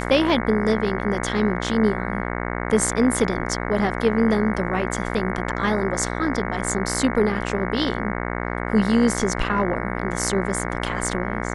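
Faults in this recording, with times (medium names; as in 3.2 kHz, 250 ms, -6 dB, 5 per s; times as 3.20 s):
buzz 60 Hz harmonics 37 -27 dBFS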